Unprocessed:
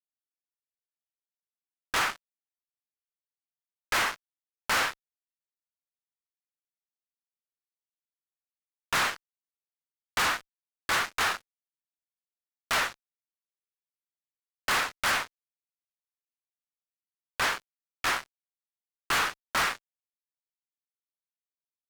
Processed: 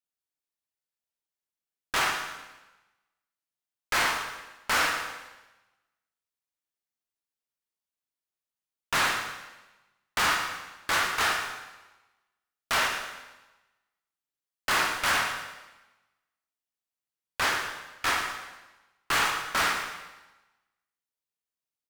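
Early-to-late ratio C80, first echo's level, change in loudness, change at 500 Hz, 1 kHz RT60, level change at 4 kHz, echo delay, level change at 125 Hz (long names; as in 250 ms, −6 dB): 5.5 dB, −10.0 dB, +1.0 dB, +2.0 dB, 1.1 s, +2.0 dB, 115 ms, +2.0 dB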